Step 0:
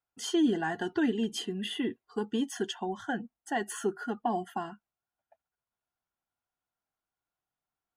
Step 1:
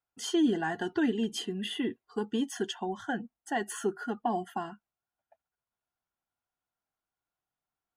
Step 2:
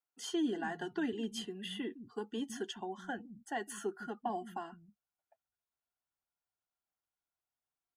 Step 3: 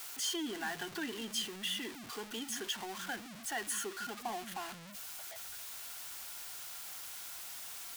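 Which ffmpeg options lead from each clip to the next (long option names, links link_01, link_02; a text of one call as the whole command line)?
ffmpeg -i in.wav -af anull out.wav
ffmpeg -i in.wav -filter_complex "[0:a]acrossover=split=190[link_01][link_02];[link_01]adelay=160[link_03];[link_03][link_02]amix=inputs=2:normalize=0,volume=-6.5dB" out.wav
ffmpeg -i in.wav -af "aeval=exprs='val(0)+0.5*0.0106*sgn(val(0))':channel_layout=same,tiltshelf=frequency=1100:gain=-7,volume=-2dB" out.wav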